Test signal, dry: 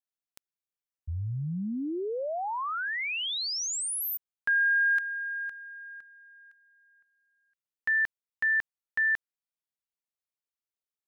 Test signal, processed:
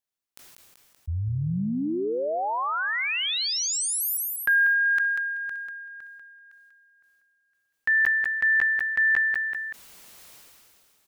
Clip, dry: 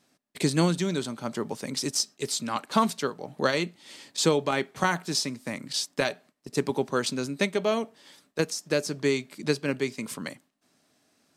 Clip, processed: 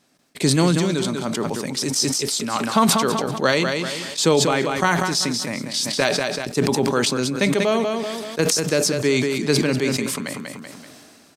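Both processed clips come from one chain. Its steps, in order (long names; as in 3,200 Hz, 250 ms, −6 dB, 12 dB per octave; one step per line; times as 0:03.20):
on a send: repeating echo 191 ms, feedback 28%, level −9.5 dB
on the sum: level that may fall only so fast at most 24 dB per second
level +4.5 dB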